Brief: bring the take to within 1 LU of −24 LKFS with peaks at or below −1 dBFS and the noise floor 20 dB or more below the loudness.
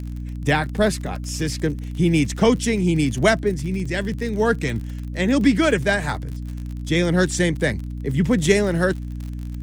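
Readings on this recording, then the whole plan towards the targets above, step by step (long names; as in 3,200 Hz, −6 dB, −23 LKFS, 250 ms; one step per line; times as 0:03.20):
crackle rate 46 per second; mains hum 60 Hz; hum harmonics up to 300 Hz; level of the hum −27 dBFS; integrated loudness −21.0 LKFS; sample peak −3.5 dBFS; target loudness −24.0 LKFS
→ click removal
mains-hum notches 60/120/180/240/300 Hz
level −3 dB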